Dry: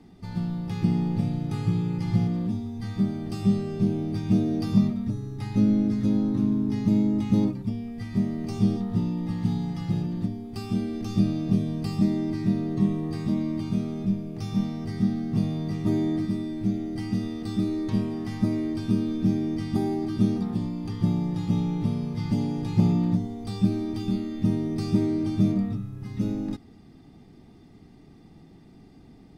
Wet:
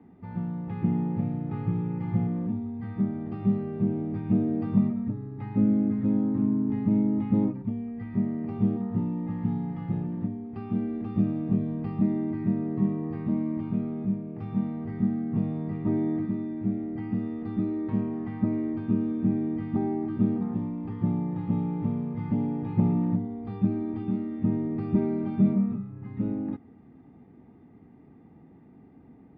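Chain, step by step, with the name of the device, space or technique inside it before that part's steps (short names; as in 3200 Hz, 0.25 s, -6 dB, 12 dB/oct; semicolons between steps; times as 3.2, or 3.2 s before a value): bass cabinet (speaker cabinet 66–2200 Hz, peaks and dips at 250 Hz +5 dB, 490 Hz +4 dB, 910 Hz +4 dB); 24.95–25.9 comb 5.1 ms, depth 60%; gain -3.5 dB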